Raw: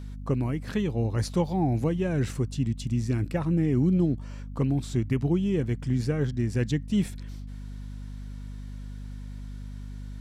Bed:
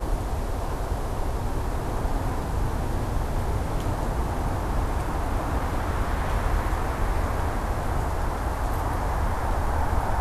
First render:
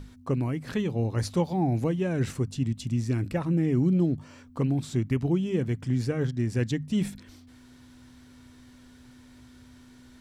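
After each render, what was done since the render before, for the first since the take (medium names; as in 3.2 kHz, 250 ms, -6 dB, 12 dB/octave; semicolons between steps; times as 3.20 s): hum notches 50/100/150/200 Hz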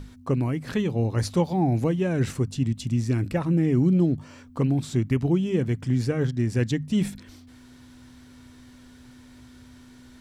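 trim +3 dB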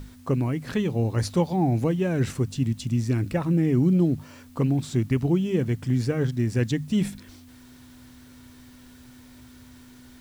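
word length cut 10-bit, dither triangular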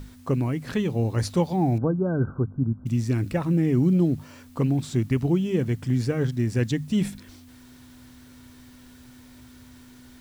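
1.78–2.86 s: brick-wall FIR low-pass 1.6 kHz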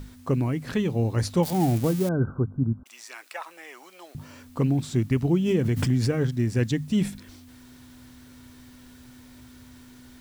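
1.43–2.09 s: zero-crossing glitches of -22 dBFS; 2.83–4.15 s: high-pass 760 Hz 24 dB/octave; 5.42–6.19 s: swell ahead of each attack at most 42 dB/s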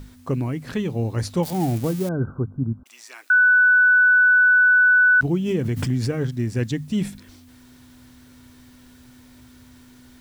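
3.30–5.21 s: bleep 1.49 kHz -11.5 dBFS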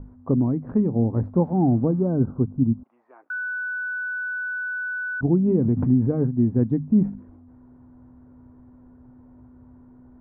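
low-pass 1 kHz 24 dB/octave; dynamic bell 240 Hz, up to +8 dB, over -40 dBFS, Q 2.2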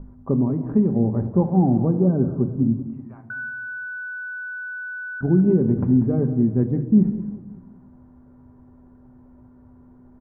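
feedback delay 191 ms, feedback 44%, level -13.5 dB; simulated room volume 2800 m³, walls furnished, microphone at 1.2 m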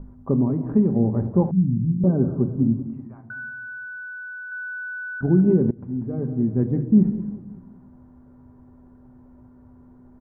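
1.51–2.04 s: inverse Chebyshev low-pass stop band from 540 Hz, stop band 50 dB; 3.07–4.52 s: distance through air 490 m; 5.71–6.76 s: fade in, from -23.5 dB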